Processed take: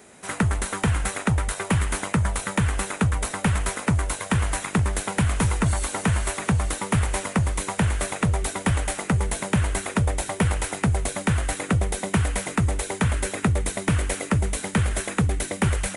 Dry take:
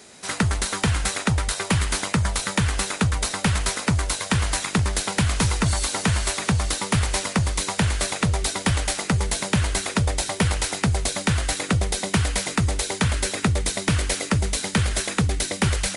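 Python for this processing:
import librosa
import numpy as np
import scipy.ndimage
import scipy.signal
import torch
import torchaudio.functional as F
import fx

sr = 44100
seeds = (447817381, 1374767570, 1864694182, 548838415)

y = fx.peak_eq(x, sr, hz=4700.0, db=-12.5, octaves=1.1)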